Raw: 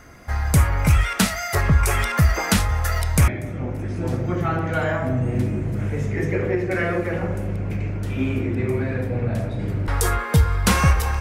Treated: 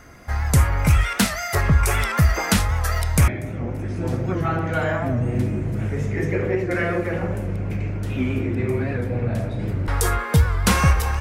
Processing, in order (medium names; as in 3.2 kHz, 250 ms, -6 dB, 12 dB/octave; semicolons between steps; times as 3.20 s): warped record 78 rpm, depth 100 cents